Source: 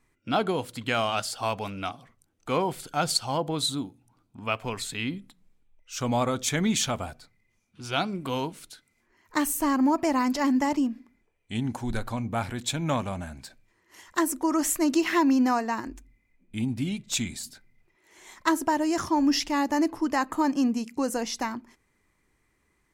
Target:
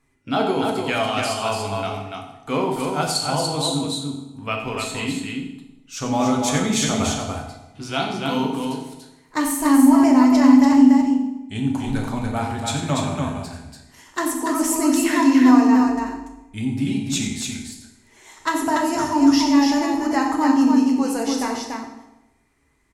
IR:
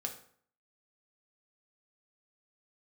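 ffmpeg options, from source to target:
-filter_complex "[0:a]asettb=1/sr,asplit=3[link_01][link_02][link_03];[link_01]atrim=end=6.994[link_04];[link_02]atrim=start=6.99:end=7.84,asetpts=PTS-STARTPTS,afade=type=in:duration=0.004:curve=qsin,afade=type=out:start_time=0.846:duration=0.004:curve=qsin,acontrast=65[link_05];[link_03]atrim=start=7.836[link_06];[link_04][link_05]acrossfade=duration=0.004:curve1=hsin:curve2=qsin[link_07];[link_07][link_06]acrossfade=duration=0.004:curve1=qsin:curve2=hsin,aecho=1:1:90|288:0.282|0.631[link_08];[1:a]atrim=start_sample=2205,asetrate=24255,aresample=44100[link_09];[link_08][link_09]afir=irnorm=-1:irlink=0"

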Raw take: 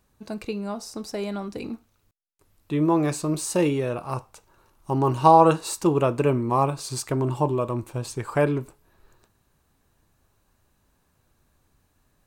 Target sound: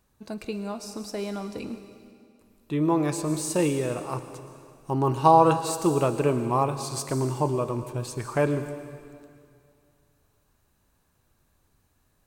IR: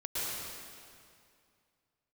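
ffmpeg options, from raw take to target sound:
-filter_complex "[0:a]asplit=2[link_01][link_02];[1:a]atrim=start_sample=2205,highshelf=frequency=4900:gain=9.5[link_03];[link_02][link_03]afir=irnorm=-1:irlink=0,volume=-16dB[link_04];[link_01][link_04]amix=inputs=2:normalize=0,volume=-3dB"

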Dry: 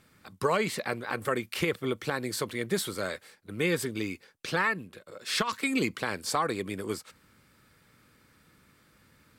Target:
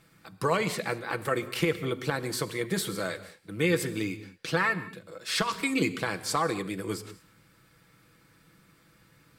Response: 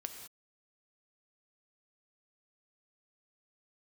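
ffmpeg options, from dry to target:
-filter_complex "[0:a]asplit=2[link_01][link_02];[1:a]atrim=start_sample=2205,lowshelf=frequency=240:gain=7.5,adelay=6[link_03];[link_02][link_03]afir=irnorm=-1:irlink=0,volume=-5dB[link_04];[link_01][link_04]amix=inputs=2:normalize=0"

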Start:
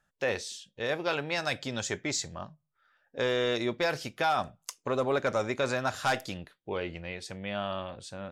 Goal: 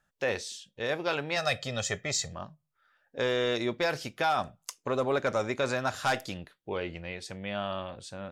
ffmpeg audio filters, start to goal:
ffmpeg -i in.wav -filter_complex "[0:a]asettb=1/sr,asplit=3[link_01][link_02][link_03];[link_01]atrim=end=1.364[link_04];[link_02]atrim=start=1.36:end=2.33,asetpts=PTS-STARTPTS,afade=type=in:duration=0.004:curve=qsin,afade=type=out:start_time=0.966:duration=0.004:curve=qsin,aecho=1:1:1.6:0.74,atrim=end_sample=42777[link_05];[link_03]atrim=start=2.326[link_06];[link_04][link_05]acrossfade=duration=0.004:curve1=hsin:curve2=qsin[link_07];[link_07][link_06]acrossfade=duration=0.004:curve1=qsin:curve2=hsin" out.wav

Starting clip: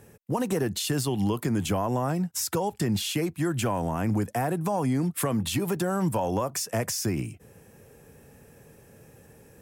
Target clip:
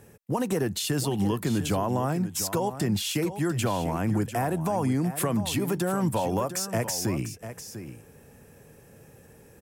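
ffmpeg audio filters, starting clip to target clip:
ffmpeg -i in.wav -af "aecho=1:1:697:0.266" out.wav

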